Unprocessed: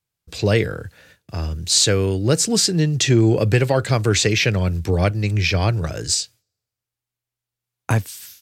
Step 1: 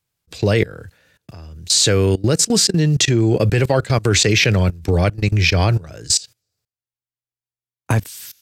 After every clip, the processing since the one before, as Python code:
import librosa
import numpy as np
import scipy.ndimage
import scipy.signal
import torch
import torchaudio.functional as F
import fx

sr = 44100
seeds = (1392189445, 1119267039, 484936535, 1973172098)

y = fx.level_steps(x, sr, step_db=21)
y = y * librosa.db_to_amplitude(6.5)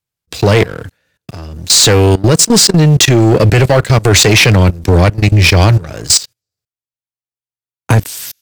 y = fx.leveller(x, sr, passes=3)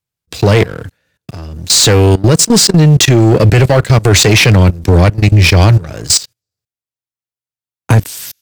y = fx.peak_eq(x, sr, hz=120.0, db=2.5, octaves=2.8)
y = y * librosa.db_to_amplitude(-1.0)